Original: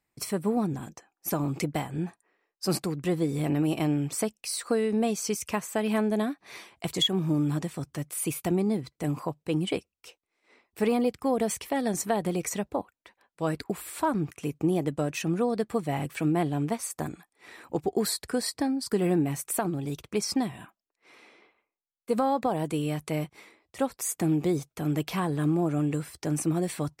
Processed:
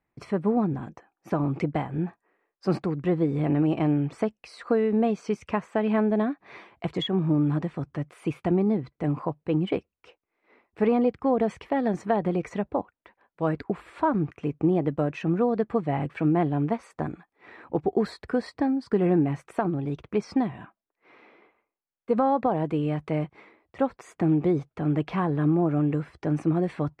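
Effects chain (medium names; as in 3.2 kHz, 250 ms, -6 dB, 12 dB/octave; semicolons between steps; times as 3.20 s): low-pass 1.9 kHz 12 dB/octave; trim +3 dB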